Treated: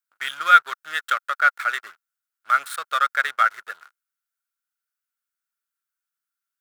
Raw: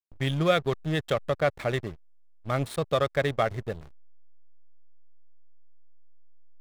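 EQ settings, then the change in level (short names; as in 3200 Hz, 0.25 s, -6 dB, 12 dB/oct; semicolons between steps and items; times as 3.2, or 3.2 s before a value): resonant high-pass 1400 Hz, resonance Q 10; high shelf 5900 Hz +10.5 dB; 0.0 dB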